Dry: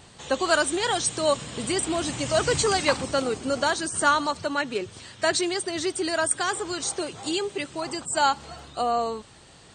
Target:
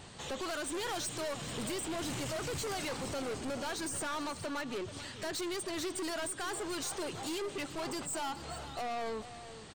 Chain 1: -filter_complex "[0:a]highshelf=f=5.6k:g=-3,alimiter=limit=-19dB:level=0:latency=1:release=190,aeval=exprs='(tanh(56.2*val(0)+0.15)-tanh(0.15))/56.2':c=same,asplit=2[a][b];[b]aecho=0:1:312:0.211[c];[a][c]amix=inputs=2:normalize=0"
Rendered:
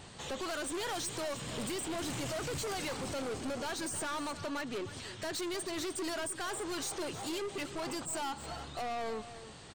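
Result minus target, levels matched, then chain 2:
echo 0.122 s early
-filter_complex "[0:a]highshelf=f=5.6k:g=-3,alimiter=limit=-19dB:level=0:latency=1:release=190,aeval=exprs='(tanh(56.2*val(0)+0.15)-tanh(0.15))/56.2':c=same,asplit=2[a][b];[b]aecho=0:1:434:0.211[c];[a][c]amix=inputs=2:normalize=0"

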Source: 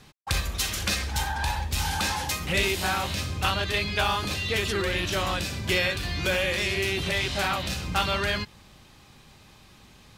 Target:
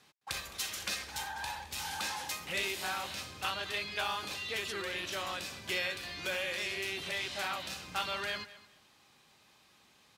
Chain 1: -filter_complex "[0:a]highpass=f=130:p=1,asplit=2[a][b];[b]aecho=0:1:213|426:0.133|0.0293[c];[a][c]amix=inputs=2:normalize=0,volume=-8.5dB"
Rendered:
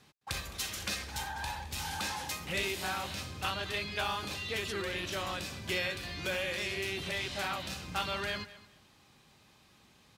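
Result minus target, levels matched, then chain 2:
125 Hz band +8.5 dB
-filter_complex "[0:a]highpass=f=490:p=1,asplit=2[a][b];[b]aecho=0:1:213|426:0.133|0.0293[c];[a][c]amix=inputs=2:normalize=0,volume=-8.5dB"

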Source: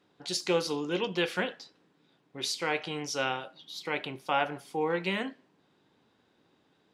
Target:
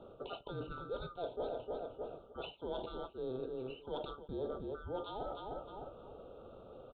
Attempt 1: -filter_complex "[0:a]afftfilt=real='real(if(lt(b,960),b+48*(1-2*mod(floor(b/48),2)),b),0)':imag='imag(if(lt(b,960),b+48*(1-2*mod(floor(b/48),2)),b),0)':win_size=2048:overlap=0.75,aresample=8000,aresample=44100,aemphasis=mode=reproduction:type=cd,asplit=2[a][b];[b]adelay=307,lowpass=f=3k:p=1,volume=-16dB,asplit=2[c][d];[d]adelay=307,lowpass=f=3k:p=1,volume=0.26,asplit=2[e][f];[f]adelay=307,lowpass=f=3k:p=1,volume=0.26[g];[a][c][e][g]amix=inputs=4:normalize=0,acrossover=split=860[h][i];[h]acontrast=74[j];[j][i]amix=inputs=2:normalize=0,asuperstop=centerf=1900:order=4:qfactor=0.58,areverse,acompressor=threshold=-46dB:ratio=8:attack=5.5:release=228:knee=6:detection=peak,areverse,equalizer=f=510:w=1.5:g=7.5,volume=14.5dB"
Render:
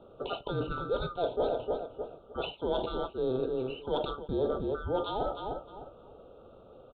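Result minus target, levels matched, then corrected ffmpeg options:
compressor: peak gain reduction -10 dB
-filter_complex "[0:a]afftfilt=real='real(if(lt(b,960),b+48*(1-2*mod(floor(b/48),2)),b),0)':imag='imag(if(lt(b,960),b+48*(1-2*mod(floor(b/48),2)),b),0)':win_size=2048:overlap=0.75,aresample=8000,aresample=44100,aemphasis=mode=reproduction:type=cd,asplit=2[a][b];[b]adelay=307,lowpass=f=3k:p=1,volume=-16dB,asplit=2[c][d];[d]adelay=307,lowpass=f=3k:p=1,volume=0.26,asplit=2[e][f];[f]adelay=307,lowpass=f=3k:p=1,volume=0.26[g];[a][c][e][g]amix=inputs=4:normalize=0,acrossover=split=860[h][i];[h]acontrast=74[j];[j][i]amix=inputs=2:normalize=0,asuperstop=centerf=1900:order=4:qfactor=0.58,areverse,acompressor=threshold=-57.5dB:ratio=8:attack=5.5:release=228:knee=6:detection=peak,areverse,equalizer=f=510:w=1.5:g=7.5,volume=14.5dB"

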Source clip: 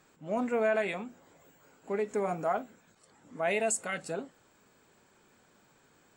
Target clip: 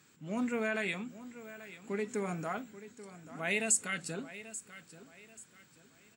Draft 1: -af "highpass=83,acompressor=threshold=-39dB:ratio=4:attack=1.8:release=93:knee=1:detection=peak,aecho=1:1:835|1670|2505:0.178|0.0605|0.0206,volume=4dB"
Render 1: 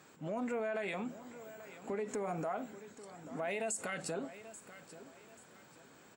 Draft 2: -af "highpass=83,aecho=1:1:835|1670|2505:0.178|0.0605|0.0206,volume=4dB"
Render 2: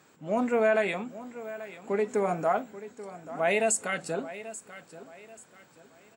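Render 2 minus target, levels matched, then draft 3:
500 Hz band +5.5 dB
-af "highpass=83,equalizer=f=670:t=o:w=1.8:g=-14.5,aecho=1:1:835|1670|2505:0.178|0.0605|0.0206,volume=4dB"

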